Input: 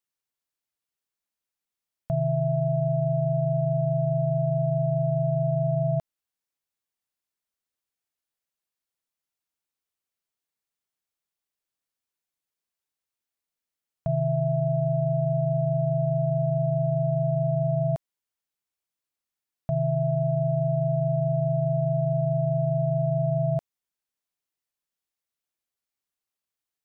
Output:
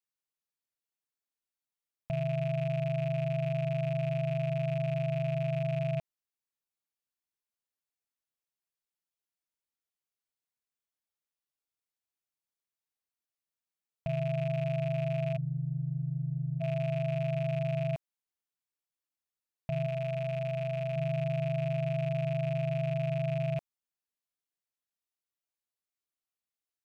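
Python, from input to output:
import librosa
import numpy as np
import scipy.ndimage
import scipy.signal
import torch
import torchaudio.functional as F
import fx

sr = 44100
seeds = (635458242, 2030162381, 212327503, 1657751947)

y = fx.rattle_buzz(x, sr, strikes_db=-26.0, level_db=-28.0)
y = fx.cheby_ripple(y, sr, hz=510.0, ripple_db=6, at=(15.36, 16.6), fade=0.02)
y = fx.peak_eq(y, sr, hz=160.0, db=-8.5, octaves=0.3, at=(19.86, 20.96))
y = F.gain(torch.from_numpy(y), -7.0).numpy()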